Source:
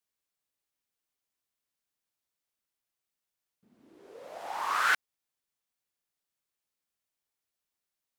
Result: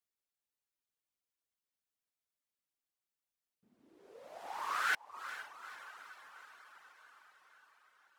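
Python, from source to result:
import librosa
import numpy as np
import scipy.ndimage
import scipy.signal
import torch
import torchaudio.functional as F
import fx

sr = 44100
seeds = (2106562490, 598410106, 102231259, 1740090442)

y = fx.echo_diffused(x, sr, ms=460, feedback_pct=64, wet_db=-10.5)
y = fx.dereverb_blind(y, sr, rt60_s=0.69)
y = F.gain(torch.from_numpy(y), -6.0).numpy()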